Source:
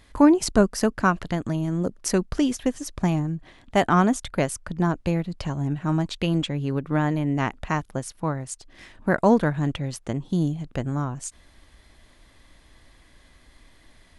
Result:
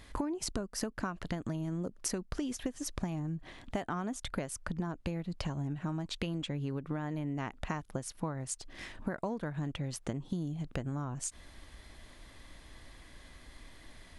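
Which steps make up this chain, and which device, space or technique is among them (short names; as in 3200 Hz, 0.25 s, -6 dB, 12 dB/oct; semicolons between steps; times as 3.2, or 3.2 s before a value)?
serial compression, leveller first (compressor 3:1, threshold -22 dBFS, peak gain reduction 9 dB; compressor 6:1, threshold -34 dBFS, peak gain reduction 15 dB); gain +1 dB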